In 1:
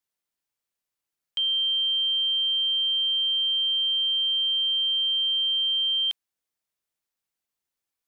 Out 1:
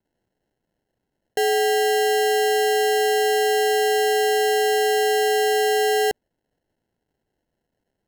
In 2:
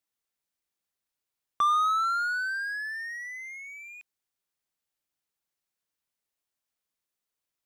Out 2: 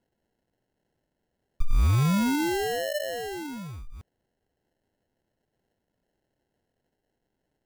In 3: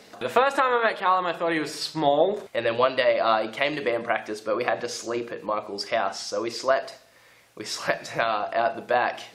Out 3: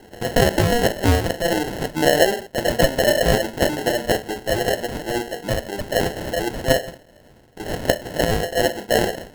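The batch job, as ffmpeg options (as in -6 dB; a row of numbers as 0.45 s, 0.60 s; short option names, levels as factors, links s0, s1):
-af "crystalizer=i=0.5:c=0,acrusher=samples=37:mix=1:aa=0.000001,volume=1.68"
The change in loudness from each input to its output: +2.0 LU, +1.0 LU, +4.0 LU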